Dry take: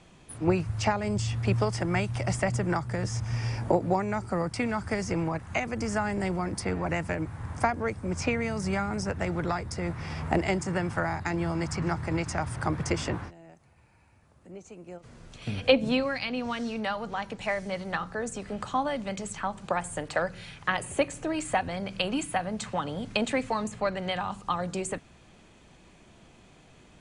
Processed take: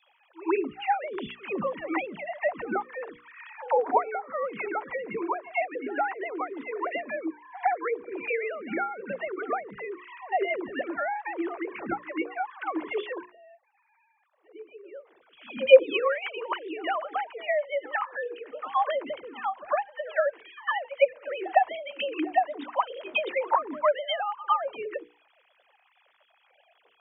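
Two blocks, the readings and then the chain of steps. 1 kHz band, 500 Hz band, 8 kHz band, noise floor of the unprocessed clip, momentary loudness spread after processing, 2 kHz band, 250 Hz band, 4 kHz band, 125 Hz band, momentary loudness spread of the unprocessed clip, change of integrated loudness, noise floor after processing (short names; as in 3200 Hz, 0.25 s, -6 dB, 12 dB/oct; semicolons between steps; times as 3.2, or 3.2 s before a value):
+3.5 dB, +3.5 dB, under -40 dB, -56 dBFS, 11 LU, +0.5 dB, -6.5 dB, -2.5 dB, under -25 dB, 7 LU, +1.0 dB, -67 dBFS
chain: sine-wave speech; notches 60/120/180/240/300/360/420/480 Hz; dynamic EQ 990 Hz, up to +8 dB, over -48 dBFS, Q 5.1; dispersion lows, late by 99 ms, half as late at 340 Hz; pre-echo 0.107 s -19 dB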